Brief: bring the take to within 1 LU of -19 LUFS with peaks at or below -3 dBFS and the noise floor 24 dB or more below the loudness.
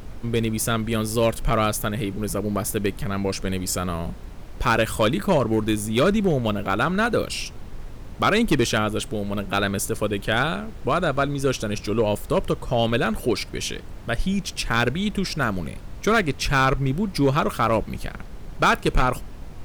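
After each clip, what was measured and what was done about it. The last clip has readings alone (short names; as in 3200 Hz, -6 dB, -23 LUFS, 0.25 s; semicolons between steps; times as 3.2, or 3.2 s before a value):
clipped 0.7%; flat tops at -12.0 dBFS; noise floor -38 dBFS; noise floor target -48 dBFS; loudness -23.5 LUFS; peak -12.0 dBFS; loudness target -19.0 LUFS
-> clip repair -12 dBFS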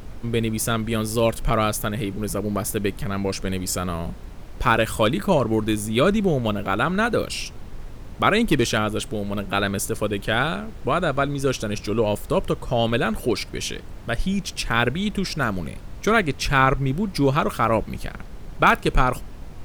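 clipped 0.0%; noise floor -38 dBFS; noise floor target -47 dBFS
-> noise print and reduce 9 dB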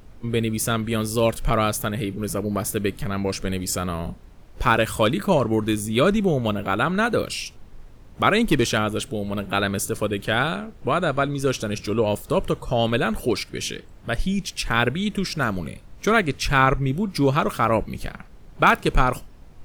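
noise floor -46 dBFS; noise floor target -47 dBFS
-> noise print and reduce 6 dB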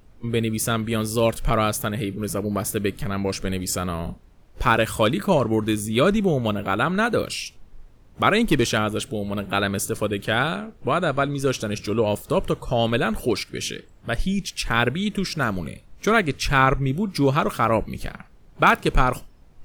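noise floor -51 dBFS; loudness -23.0 LUFS; peak -3.5 dBFS; loudness target -19.0 LUFS
-> gain +4 dB; limiter -3 dBFS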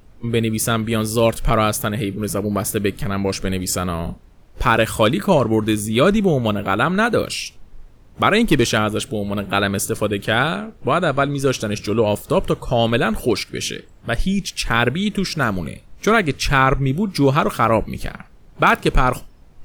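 loudness -19.0 LUFS; peak -3.0 dBFS; noise floor -47 dBFS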